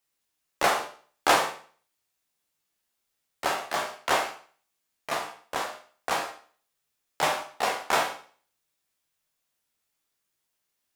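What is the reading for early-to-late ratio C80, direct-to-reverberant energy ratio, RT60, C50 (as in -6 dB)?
12.5 dB, 2.0 dB, 0.45 s, 8.5 dB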